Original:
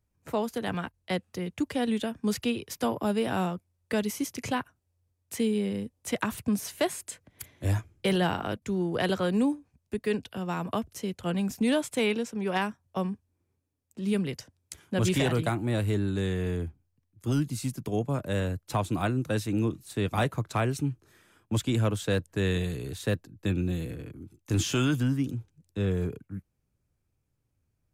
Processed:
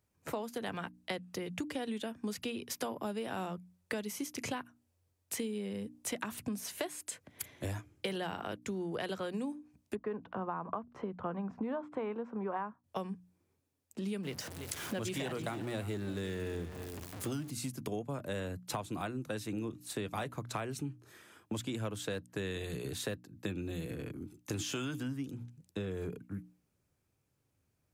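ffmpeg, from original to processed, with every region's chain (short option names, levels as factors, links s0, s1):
-filter_complex "[0:a]asettb=1/sr,asplit=3[s0][s1][s2];[s0]atrim=end=9.954[s3];[s1]atrim=start=9.95:end=12.84,asetpts=PTS-STARTPTS,afade=t=in:d=0.004:c=qsin,afade=t=out:st=2.886:d=0.004:c=qsin,agate=range=0.0224:threshold=0.00178:ratio=3:release=100:detection=peak,lowpass=f=1100:t=q:w=2.6,acompressor=mode=upward:threshold=0.0112:ratio=2.5:attack=3.2:release=140:knee=2.83:detection=peak[s4];[s2]atrim=start=12.836[s5];[s3][s4]acrossfade=d=0.004:c1=hsin:c2=qsin[s6];[s6][s5]acrossfade=d=0.004:c1=qsin:c2=hsin,asettb=1/sr,asplit=3[s7][s8][s9];[s7]atrim=end=14.234[s10];[s8]atrim=start=14.23:end=17.51,asetpts=PTS-STARTPTS,afade=t=in:d=0.004:c=qsin,afade=t=out:st=3.276:d=0.004:c=qsin,aeval=exprs='val(0)+0.5*0.0112*sgn(val(0))':c=same,aecho=1:1:338:0.158,atrim=end_sample=144648[s11];[s9]atrim=start=17.506[s12];[s10][s11]acrossfade=d=0.004:c1=hsin:c2=qsin[s13];[s13][s12]acrossfade=d=0.004:c1=qsin:c2=hsin,highpass=f=170:p=1,bandreject=f=60:t=h:w=6,bandreject=f=120:t=h:w=6,bandreject=f=180:t=h:w=6,bandreject=f=240:t=h:w=6,bandreject=f=300:t=h:w=6,acompressor=threshold=0.0112:ratio=6,volume=1.5"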